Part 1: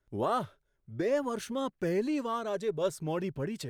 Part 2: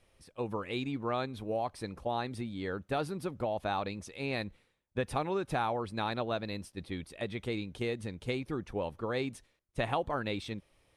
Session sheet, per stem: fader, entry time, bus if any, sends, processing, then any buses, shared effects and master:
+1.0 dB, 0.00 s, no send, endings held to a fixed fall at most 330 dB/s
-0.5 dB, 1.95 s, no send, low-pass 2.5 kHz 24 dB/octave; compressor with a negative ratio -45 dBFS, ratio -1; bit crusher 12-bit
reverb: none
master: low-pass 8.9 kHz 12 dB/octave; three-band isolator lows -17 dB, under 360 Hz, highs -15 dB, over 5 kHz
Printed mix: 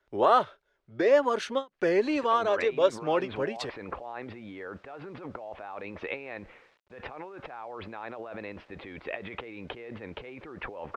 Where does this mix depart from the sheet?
stem 1 +1.0 dB -> +9.5 dB; stem 2 -0.5 dB -> +10.0 dB

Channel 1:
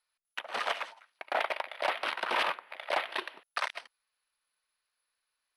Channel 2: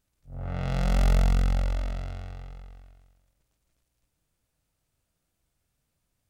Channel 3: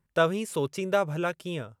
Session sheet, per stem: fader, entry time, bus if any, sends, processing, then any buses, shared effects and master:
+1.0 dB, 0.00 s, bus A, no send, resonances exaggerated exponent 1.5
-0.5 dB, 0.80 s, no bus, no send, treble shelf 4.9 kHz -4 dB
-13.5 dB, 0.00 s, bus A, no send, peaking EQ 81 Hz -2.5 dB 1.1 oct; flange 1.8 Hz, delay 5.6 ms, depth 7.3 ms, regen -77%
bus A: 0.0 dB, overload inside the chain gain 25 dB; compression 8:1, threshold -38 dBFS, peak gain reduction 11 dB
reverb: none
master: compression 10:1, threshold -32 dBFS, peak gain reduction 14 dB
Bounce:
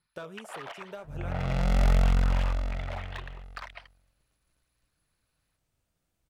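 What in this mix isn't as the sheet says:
stem 3 -13.5 dB -> -4.5 dB; master: missing compression 10:1, threshold -32 dBFS, peak gain reduction 14 dB

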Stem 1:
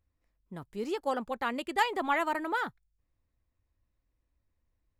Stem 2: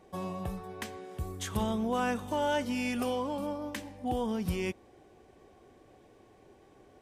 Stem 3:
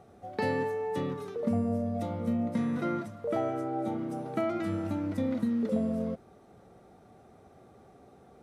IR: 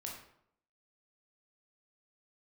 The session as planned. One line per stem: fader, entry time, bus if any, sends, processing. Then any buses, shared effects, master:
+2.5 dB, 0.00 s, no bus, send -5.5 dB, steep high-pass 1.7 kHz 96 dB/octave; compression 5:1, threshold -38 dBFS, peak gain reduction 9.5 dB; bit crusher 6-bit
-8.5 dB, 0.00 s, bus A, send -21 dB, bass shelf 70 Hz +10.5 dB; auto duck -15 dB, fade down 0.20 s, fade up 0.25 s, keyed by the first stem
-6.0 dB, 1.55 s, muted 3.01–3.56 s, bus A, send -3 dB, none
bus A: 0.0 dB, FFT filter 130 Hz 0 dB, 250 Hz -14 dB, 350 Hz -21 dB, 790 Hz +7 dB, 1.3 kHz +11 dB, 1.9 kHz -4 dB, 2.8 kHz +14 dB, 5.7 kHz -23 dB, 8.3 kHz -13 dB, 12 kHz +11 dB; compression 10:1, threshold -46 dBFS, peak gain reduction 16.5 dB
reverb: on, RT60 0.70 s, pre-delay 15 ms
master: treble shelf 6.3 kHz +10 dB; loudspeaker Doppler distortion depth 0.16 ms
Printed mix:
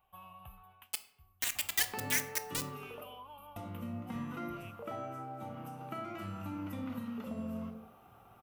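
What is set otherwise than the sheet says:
stem 2 -8.5 dB -> -18.5 dB; master: missing loudspeaker Doppler distortion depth 0.16 ms

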